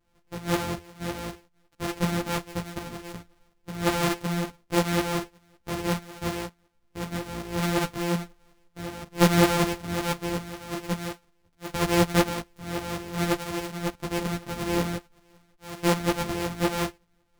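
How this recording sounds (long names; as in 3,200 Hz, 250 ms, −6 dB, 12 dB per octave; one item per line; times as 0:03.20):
a buzz of ramps at a fixed pitch in blocks of 256 samples
tremolo saw up 5.4 Hz, depth 60%
a shimmering, thickened sound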